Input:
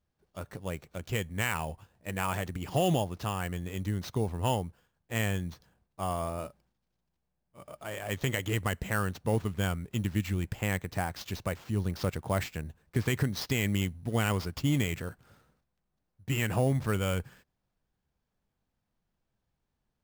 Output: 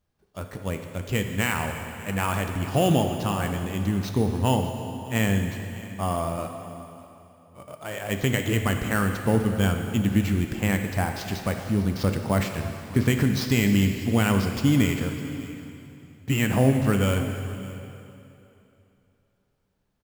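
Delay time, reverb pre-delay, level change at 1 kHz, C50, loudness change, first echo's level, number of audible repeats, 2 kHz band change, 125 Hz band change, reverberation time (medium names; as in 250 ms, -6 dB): 602 ms, 5 ms, +5.5 dB, 5.5 dB, +7.0 dB, -19.5 dB, 1, +6.0 dB, +7.0 dB, 2.9 s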